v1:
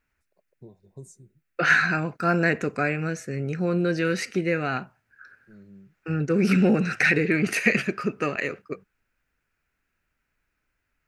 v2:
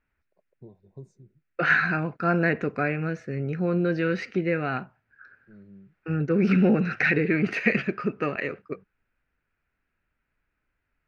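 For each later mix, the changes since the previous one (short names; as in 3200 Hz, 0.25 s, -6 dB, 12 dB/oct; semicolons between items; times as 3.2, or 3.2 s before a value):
master: add air absorption 250 m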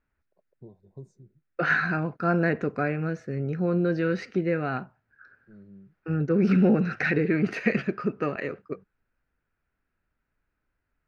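master: add bell 2400 Hz -6.5 dB 1 oct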